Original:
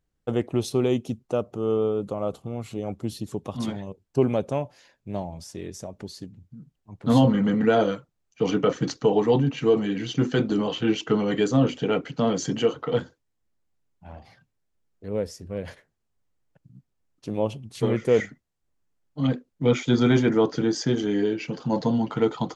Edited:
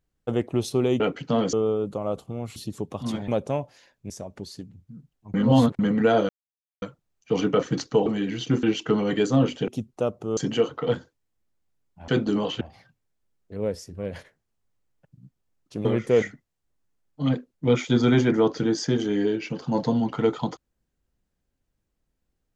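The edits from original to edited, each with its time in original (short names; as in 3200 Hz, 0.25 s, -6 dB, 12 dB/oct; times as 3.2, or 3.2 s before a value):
1–1.69 swap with 11.89–12.42
2.72–3.1 cut
3.82–4.3 cut
5.12–5.73 cut
6.97–7.42 reverse
7.92 insert silence 0.53 s
9.16–9.74 cut
10.31–10.84 move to 14.13
17.37–17.83 cut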